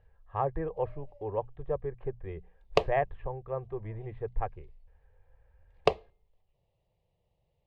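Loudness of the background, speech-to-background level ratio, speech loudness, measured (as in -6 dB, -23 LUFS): -32.0 LUFS, -4.0 dB, -36.0 LUFS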